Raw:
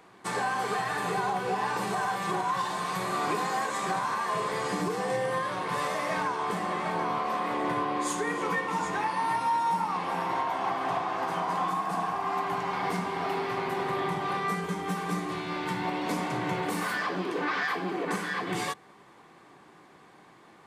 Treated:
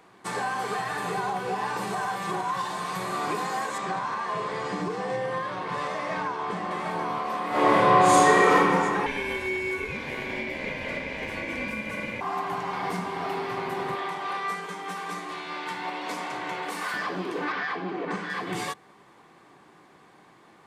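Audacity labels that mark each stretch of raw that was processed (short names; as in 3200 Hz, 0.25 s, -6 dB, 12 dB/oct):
3.780000	6.710000	air absorption 79 m
7.490000	8.540000	reverb throw, RT60 2.7 s, DRR -11.5 dB
9.060000	12.210000	ring modulator 1300 Hz
13.950000	16.940000	weighting filter A
17.520000	18.300000	air absorption 120 m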